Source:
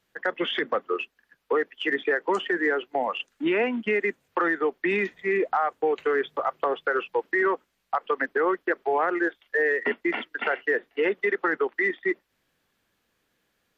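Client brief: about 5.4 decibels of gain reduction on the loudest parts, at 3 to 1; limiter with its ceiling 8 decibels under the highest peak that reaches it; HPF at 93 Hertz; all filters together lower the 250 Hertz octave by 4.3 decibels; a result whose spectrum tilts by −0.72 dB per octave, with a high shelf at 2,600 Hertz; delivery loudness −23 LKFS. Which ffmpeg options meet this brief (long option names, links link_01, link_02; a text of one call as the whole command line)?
ffmpeg -i in.wav -af "highpass=93,equalizer=frequency=250:width_type=o:gain=-7,highshelf=frequency=2600:gain=-7,acompressor=threshold=-29dB:ratio=3,volume=12.5dB,alimiter=limit=-12.5dB:level=0:latency=1" out.wav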